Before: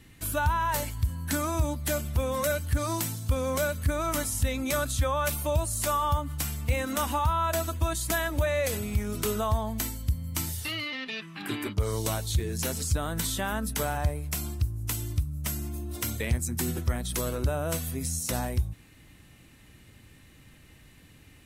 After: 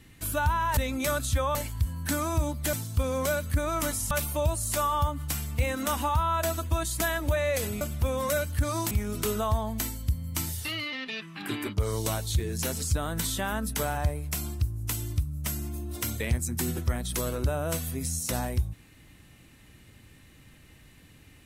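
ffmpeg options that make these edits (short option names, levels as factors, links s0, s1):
-filter_complex "[0:a]asplit=7[s0][s1][s2][s3][s4][s5][s6];[s0]atrim=end=0.772[s7];[s1]atrim=start=4.428:end=5.212[s8];[s2]atrim=start=0.768:end=1.952[s9];[s3]atrim=start=3.048:end=4.432[s10];[s4]atrim=start=5.208:end=8.912[s11];[s5]atrim=start=1.948:end=3.052[s12];[s6]atrim=start=8.908[s13];[s7][s8]acrossfade=d=0.004:c1=hsin:c2=hsin[s14];[s14][s9]acrossfade=d=0.004:c1=hsin:c2=hsin[s15];[s15][s10]acrossfade=d=0.004:c1=hsin:c2=hsin[s16];[s16][s11]acrossfade=d=0.004:c1=hsin:c2=hsin[s17];[s17][s12]acrossfade=d=0.004:c1=hsin:c2=hsin[s18];[s18][s13]acrossfade=d=0.004:c1=hsin:c2=hsin"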